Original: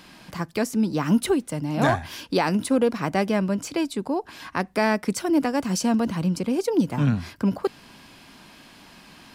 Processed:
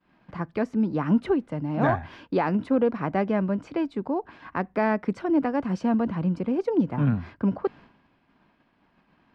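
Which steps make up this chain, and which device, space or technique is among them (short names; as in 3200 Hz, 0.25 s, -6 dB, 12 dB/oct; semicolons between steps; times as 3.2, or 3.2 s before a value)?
hearing-loss simulation (LPF 1800 Hz 12 dB/oct; expander -41 dBFS); gain -1.5 dB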